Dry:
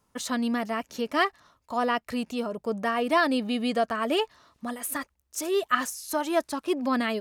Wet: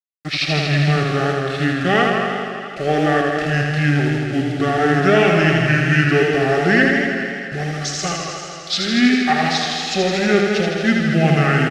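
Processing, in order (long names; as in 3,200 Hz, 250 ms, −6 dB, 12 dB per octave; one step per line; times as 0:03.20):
mu-law and A-law mismatch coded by A
flat-topped bell 3,800 Hz +8.5 dB 2.8 octaves
in parallel at +2.5 dB: brickwall limiter −14 dBFS, peak gain reduction 9 dB
on the sum: bit reduction 6 bits
change of speed 0.616×
high-frequency loss of the air 94 metres
on a send: feedback echo with a high-pass in the loop 219 ms, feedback 56%, high-pass 160 Hz, level −9.5 dB
on the sum: downsampling to 32,000 Hz
Butterworth band-reject 1,000 Hz, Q 2.2
feedback echo with a swinging delay time 81 ms, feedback 76%, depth 63 cents, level −4 dB
level +1 dB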